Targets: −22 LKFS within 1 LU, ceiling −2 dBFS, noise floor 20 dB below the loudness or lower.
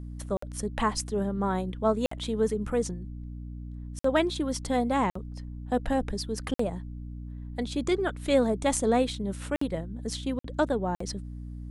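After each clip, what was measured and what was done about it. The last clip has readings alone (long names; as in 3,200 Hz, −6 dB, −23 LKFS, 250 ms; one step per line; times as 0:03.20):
number of dropouts 8; longest dropout 54 ms; mains hum 60 Hz; hum harmonics up to 300 Hz; level of the hum −36 dBFS; integrated loudness −29.0 LKFS; sample peak −11.0 dBFS; target loudness −22.0 LKFS
→ repair the gap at 0:00.37/0:02.06/0:03.99/0:05.10/0:06.54/0:09.56/0:10.39/0:10.95, 54 ms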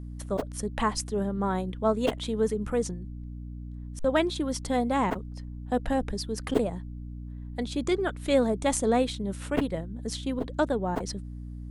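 number of dropouts 0; mains hum 60 Hz; hum harmonics up to 300 Hz; level of the hum −36 dBFS
→ mains-hum notches 60/120/180/240/300 Hz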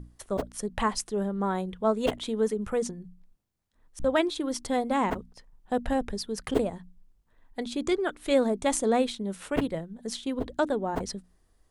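mains hum none found; integrated loudness −29.5 LKFS; sample peak −10.5 dBFS; target loudness −22.0 LKFS
→ level +7.5 dB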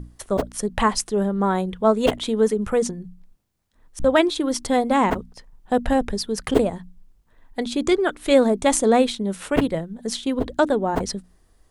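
integrated loudness −22.0 LKFS; sample peak −3.0 dBFS; background noise floor −59 dBFS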